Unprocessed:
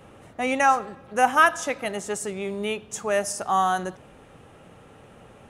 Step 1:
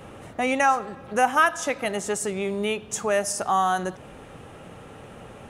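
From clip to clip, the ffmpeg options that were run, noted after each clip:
-af "acompressor=threshold=-35dB:ratio=1.5,volume=6dB"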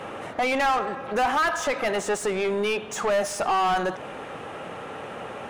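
-filter_complex "[0:a]asplit=2[a][b];[b]highpass=f=720:p=1,volume=27dB,asoftclip=type=tanh:threshold=-6.5dB[c];[a][c]amix=inputs=2:normalize=0,lowpass=f=2k:p=1,volume=-6dB,volume=-8dB"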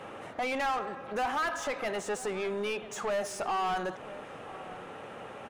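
-filter_complex "[0:a]asplit=2[a][b];[b]adelay=991.3,volume=-16dB,highshelf=f=4k:g=-22.3[c];[a][c]amix=inputs=2:normalize=0,volume=-8dB"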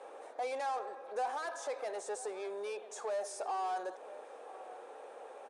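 -af "highpass=f=380:w=0.5412,highpass=f=380:w=1.3066,equalizer=f=490:t=q:w=4:g=5,equalizer=f=770:t=q:w=4:g=3,equalizer=f=1.3k:t=q:w=4:g=-6,equalizer=f=2k:t=q:w=4:g=-7,equalizer=f=2.9k:t=q:w=4:g=-10,equalizer=f=9k:t=q:w=4:g=7,lowpass=f=10k:w=0.5412,lowpass=f=10k:w=1.3066,volume=-6.5dB"

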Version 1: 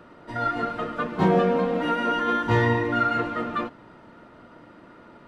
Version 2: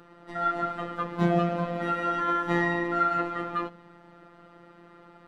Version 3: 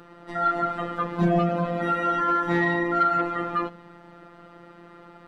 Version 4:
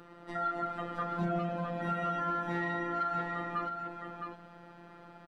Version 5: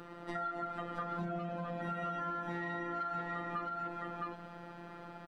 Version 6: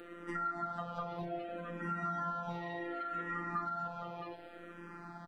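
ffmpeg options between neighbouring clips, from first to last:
-af "bandreject=f=47:t=h:w=4,bandreject=f=94:t=h:w=4,bandreject=f=141:t=h:w=4,bandreject=f=188:t=h:w=4,bandreject=f=235:t=h:w=4,bandreject=f=282:t=h:w=4,bandreject=f=329:t=h:w=4,bandreject=f=376:t=h:w=4,bandreject=f=423:t=h:w=4,bandreject=f=470:t=h:w=4,bandreject=f=517:t=h:w=4,bandreject=f=564:t=h:w=4,bandreject=f=611:t=h:w=4,afftfilt=real='hypot(re,im)*cos(PI*b)':imag='0':win_size=1024:overlap=0.75"
-af "asoftclip=type=tanh:threshold=-15.5dB,volume=4.5dB"
-af "acompressor=threshold=-29dB:ratio=2,aecho=1:1:663:0.501,volume=-5dB"
-af "acompressor=threshold=-39dB:ratio=6,volume=3.5dB"
-filter_complex "[0:a]asplit=2[a][b];[b]afreqshift=-0.66[c];[a][c]amix=inputs=2:normalize=1,volume=2.5dB"

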